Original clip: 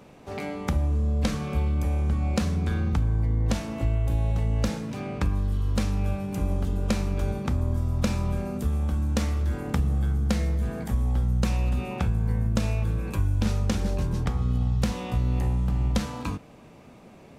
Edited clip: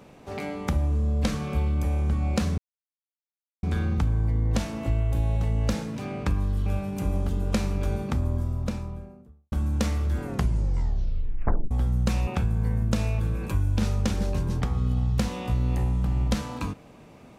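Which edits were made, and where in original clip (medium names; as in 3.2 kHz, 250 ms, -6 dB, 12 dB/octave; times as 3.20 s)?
2.58 s: insert silence 1.05 s
5.61–6.02 s: delete
7.43–8.88 s: studio fade out
9.58 s: tape stop 1.49 s
11.63–11.91 s: delete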